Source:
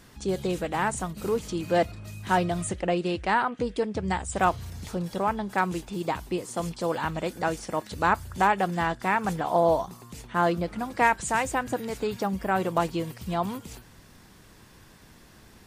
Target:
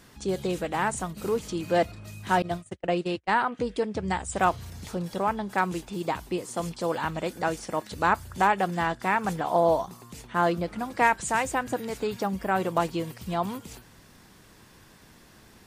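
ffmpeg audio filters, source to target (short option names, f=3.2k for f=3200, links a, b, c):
-filter_complex "[0:a]lowshelf=f=97:g=-5,asettb=1/sr,asplit=3[a][b][c];[a]atrim=end=2.424[d];[b]atrim=start=2.42:end=3.42,asetpts=PTS-STARTPTS,afade=t=in:d=0.004:c=qsin,afade=t=out:st=0.996:d=0.004:c=qsin,agate=range=-38dB:threshold=-28dB:ratio=16:detection=peak[e];[c]atrim=start=3.416[f];[d][e]acrossfade=d=0.004:c1=hsin:c2=qsin[g];[g][f]acrossfade=d=0.004:c1=qsin:c2=hsin"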